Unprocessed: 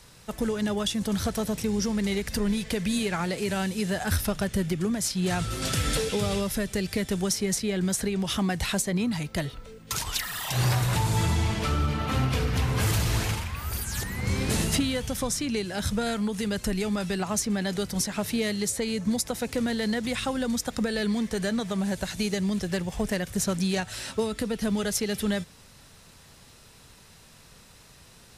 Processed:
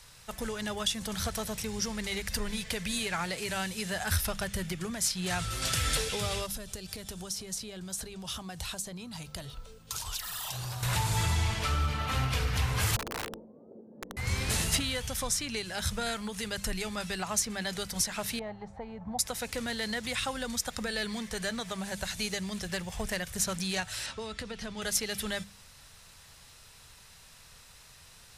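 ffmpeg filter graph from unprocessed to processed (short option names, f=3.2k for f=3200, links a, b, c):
-filter_complex "[0:a]asettb=1/sr,asplit=3[a][b][c];[a]atrim=end=6.464[d];[b]atrim=start=6.46:end=10.83,asetpts=PTS-STARTPTS,afade=t=in:d=0.004:c=qsin,afade=t=out:st=4.366:d=0.004:c=qsin,acompressor=threshold=-31dB:ratio=4:attack=3.2:release=140:knee=1:detection=peak,equalizer=f=2k:t=o:w=0.64:g=-10[e];[c]atrim=start=10.826[f];[d][e]acrossfade=d=0.004:c1=hsin:c2=qsin[g];[g][f]acrossfade=d=0.004:c1=qsin:c2=hsin,asettb=1/sr,asplit=3[h][i][j];[h]atrim=end=12.964[k];[i]atrim=start=12.96:end=14.17,asetpts=PTS-STARTPTS,afade=t=in:d=0.004:c=qsin,afade=t=out:st=1.206:d=0.004:c=qsin,asuperpass=centerf=340:order=8:qfactor=1,acontrast=59,aeval=exprs='(mod(21.1*val(0)+1,2)-1)/21.1':c=same[l];[j]atrim=start=14.166[m];[k][l]acrossfade=d=0.004:c1=hsin:c2=qsin[n];[n][m]acrossfade=d=0.004:c1=qsin:c2=hsin,asettb=1/sr,asplit=3[o][p][q];[o]atrim=end=18.394[r];[p]atrim=start=18.39:end=19.19,asetpts=PTS-STARTPTS,afade=t=in:d=0.004:c=qsin,afade=t=out:st=0.796:d=0.004:c=qsin,lowpass=f=790:t=q:w=7.5,equalizer=f=450:t=o:w=2.1:g=-8.5[s];[q]atrim=start=19.186[t];[r][s]acrossfade=d=0.004:c1=hsin:c2=qsin[u];[u][t]acrossfade=d=0.004:c1=qsin:c2=hsin,asettb=1/sr,asplit=3[v][w][x];[v]atrim=end=24.064[y];[w]atrim=start=24.06:end=24.82,asetpts=PTS-STARTPTS,afade=t=in:d=0.004:c=qsin,afade=t=out:st=0.756:d=0.004:c=qsin,lowpass=6.2k,acompressor=threshold=-28dB:ratio=2.5:attack=3.2:release=140:knee=1:detection=peak[z];[x]atrim=start=24.816[aa];[y][z]acrossfade=d=0.004:c1=hsin:c2=qsin[ab];[ab][aa]acrossfade=d=0.004:c1=qsin:c2=hsin,equalizer=f=280:t=o:w=2.1:g=-11.5,bandreject=f=50:t=h:w=6,bandreject=f=100:t=h:w=6,bandreject=f=150:t=h:w=6,bandreject=f=200:t=h:w=6"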